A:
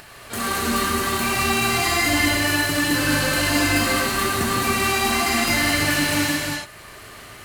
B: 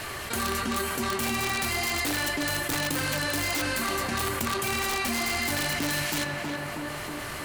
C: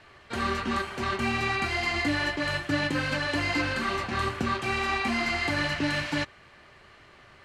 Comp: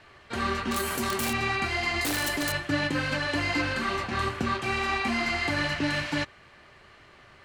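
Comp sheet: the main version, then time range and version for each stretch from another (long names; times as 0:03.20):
C
0:00.71–0:01.33: punch in from B
0:02.01–0:02.52: punch in from B
not used: A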